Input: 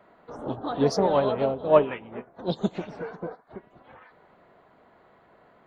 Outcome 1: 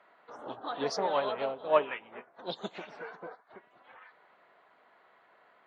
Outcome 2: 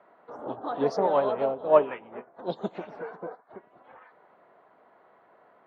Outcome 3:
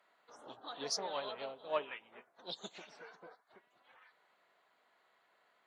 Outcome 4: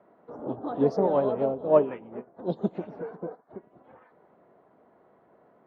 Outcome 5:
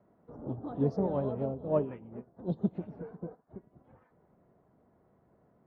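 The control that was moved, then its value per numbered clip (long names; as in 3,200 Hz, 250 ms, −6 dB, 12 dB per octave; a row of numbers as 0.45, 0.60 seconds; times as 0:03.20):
resonant band-pass, frequency: 2,300, 880, 7,700, 350, 100 Hertz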